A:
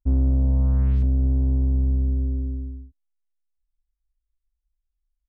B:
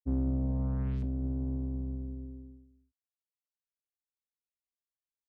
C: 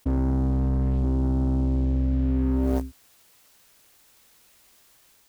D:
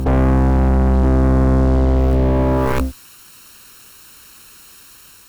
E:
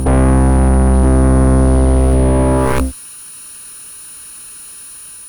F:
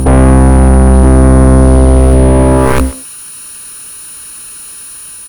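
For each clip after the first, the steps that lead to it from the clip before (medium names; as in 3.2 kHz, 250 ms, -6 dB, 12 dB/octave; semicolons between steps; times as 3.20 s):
level-controlled noise filter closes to 480 Hz, open at -16.5 dBFS; high-pass 110 Hz 12 dB/octave; upward expansion 2.5:1, over -38 dBFS; trim -3 dB
level rider gain up to 3 dB; waveshaping leveller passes 3; level flattener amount 100%; trim +1 dB
comb filter that takes the minimum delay 0.72 ms; reverse echo 668 ms -13.5 dB; sine folder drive 12 dB, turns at -11.5 dBFS
whistle 9.7 kHz -35 dBFS; trim +3.5 dB
speakerphone echo 130 ms, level -13 dB; trim +5.5 dB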